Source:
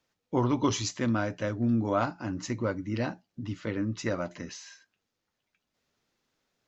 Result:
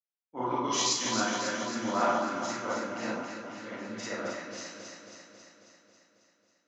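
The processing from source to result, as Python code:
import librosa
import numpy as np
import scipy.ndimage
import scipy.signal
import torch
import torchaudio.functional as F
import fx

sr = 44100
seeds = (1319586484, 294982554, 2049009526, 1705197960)

y = scipy.signal.sosfilt(scipy.signal.butter(2, 330.0, 'highpass', fs=sr, output='sos'), x)
y = fx.peak_eq(y, sr, hz=430.0, db=-6.5, octaves=0.98)
y = fx.echo_alternate(y, sr, ms=136, hz=1300.0, feedback_pct=87, wet_db=-2.5)
y = fx.rev_schroeder(y, sr, rt60_s=0.46, comb_ms=32, drr_db=-4.0)
y = fx.band_widen(y, sr, depth_pct=70)
y = y * 10.0 ** (-5.0 / 20.0)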